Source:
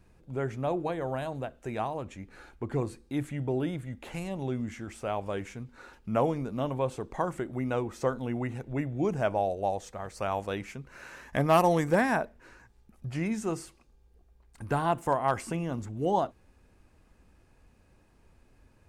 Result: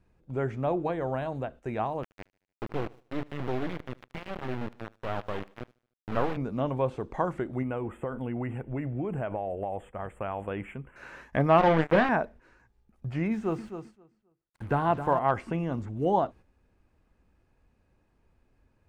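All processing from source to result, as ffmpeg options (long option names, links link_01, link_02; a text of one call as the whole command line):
ffmpeg -i in.wav -filter_complex "[0:a]asettb=1/sr,asplit=3[link_01][link_02][link_03];[link_01]atrim=end=2.034[link_04];[link_02]atrim=start=2.03:end=6.37,asetpts=PTS-STARTPTS,afade=type=in:duration=0.004:curve=qsin,afade=type=out:start_time=4.336:duration=0.004:curve=qsin,highpass=frequency=56:poles=1,acrusher=bits=3:dc=4:mix=0:aa=0.000001,aecho=1:1:75|150|225|300:0.0708|0.0418|0.0246|0.0145,atrim=end_sample=191394[link_05];[link_03]atrim=start=6.366[link_06];[link_04][link_05]acrossfade=duration=0.004:curve1=hsin:curve2=qsin[link_07];[link_07][link_06]acrossfade=duration=0.004:curve1=qsin:curve2=hsin,asettb=1/sr,asplit=3[link_08][link_09][link_10];[link_08]atrim=end=7.624[link_11];[link_09]atrim=start=7.62:end=10.96,asetpts=PTS-STARTPTS,afade=type=in:duration=0.004:curve=qsin,afade=type=out:start_time=3.336:duration=0.004:curve=qsin,acompressor=threshold=-29dB:ratio=12:attack=3.2:release=140:knee=1:detection=peak,asuperstop=centerf=5000:order=12:qfactor=1.2[link_12];[link_10]atrim=start=10.956[link_13];[link_11][link_12]acrossfade=duration=0.004:curve1=hsin:curve2=qsin[link_14];[link_14][link_13]acrossfade=duration=0.004:curve1=qsin:curve2=hsin,asettb=1/sr,asplit=3[link_15][link_16][link_17];[link_15]atrim=end=11.584[link_18];[link_16]atrim=start=11.58:end=12.09,asetpts=PTS-STARTPTS,afade=type=in:duration=0.004:curve=qsin,afade=type=out:start_time=0.506:duration=0.004:curve=qsin,acrusher=bits=3:mix=0:aa=0.5,asplit=2[link_19][link_20];[link_20]adelay=25,volume=-10dB[link_21];[link_19][link_21]amix=inputs=2:normalize=0,atrim=end_sample=22491[link_22];[link_17]atrim=start=12.086[link_23];[link_18][link_22]acrossfade=duration=0.004:curve1=hsin:curve2=qsin[link_24];[link_24][link_23]acrossfade=duration=0.004:curve1=qsin:curve2=hsin,asettb=1/sr,asplit=3[link_25][link_26][link_27];[link_25]atrim=end=13.324[link_28];[link_26]atrim=start=13.32:end=15.19,asetpts=PTS-STARTPTS,afade=type=in:duration=0.004:curve=qsin,afade=type=out:start_time=1.866:duration=0.004:curve=qsin,acrusher=bits=7:mix=0:aa=0.5,asplit=2[link_29][link_30];[link_30]adelay=264,lowpass=frequency=3500:poles=1,volume=-9.5dB,asplit=2[link_31][link_32];[link_32]adelay=264,lowpass=frequency=3500:poles=1,volume=0.26,asplit=2[link_33][link_34];[link_34]adelay=264,lowpass=frequency=3500:poles=1,volume=0.26[link_35];[link_29][link_31][link_33][link_35]amix=inputs=4:normalize=0,atrim=end_sample=82467[link_36];[link_27]atrim=start=15.186[link_37];[link_28][link_36]acrossfade=duration=0.004:curve1=hsin:curve2=qsin[link_38];[link_38][link_37]acrossfade=duration=0.004:curve1=qsin:curve2=hsin,agate=range=-8dB:threshold=-48dB:ratio=16:detection=peak,acrossover=split=3500[link_39][link_40];[link_40]acompressor=threshold=-59dB:ratio=4:attack=1:release=60[link_41];[link_39][link_41]amix=inputs=2:normalize=0,highshelf=frequency=5100:gain=-10.5,volume=2dB" out.wav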